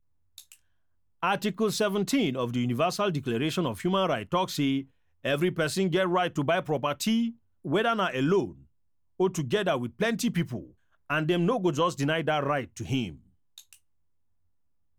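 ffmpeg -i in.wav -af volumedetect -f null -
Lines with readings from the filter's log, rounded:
mean_volume: -28.6 dB
max_volume: -13.7 dB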